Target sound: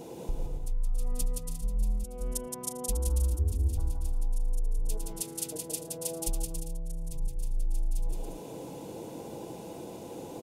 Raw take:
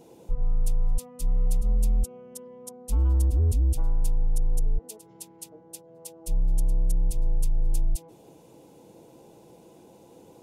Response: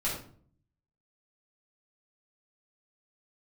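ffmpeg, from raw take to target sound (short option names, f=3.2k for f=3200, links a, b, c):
-filter_complex "[0:a]asettb=1/sr,asplit=3[a][b][c];[a]atrim=end=3.054[d];[b]atrim=start=3.05:end=3.5,asetpts=PTS-STARTPTS,afade=t=in:d=0.004:c=qsin,afade=t=out:st=0.446:d=0.004:c=qsin,highshelf=f=6k:g=9.5[e];[c]atrim=start=3.496[f];[d][e]acrossfade=d=0.004:c1=hsin:c2=qsin[g];[g][f]acrossfade=d=0.004:c1=qsin:c2=hsin,asplit=2[h][i];[i]alimiter=limit=-22.5dB:level=0:latency=1,volume=-2dB[j];[h][j]amix=inputs=2:normalize=0,acompressor=threshold=-31dB:ratio=12,aecho=1:1:170|280.5|352.3|399|429.4:0.631|0.398|0.251|0.158|0.1,volume=3dB"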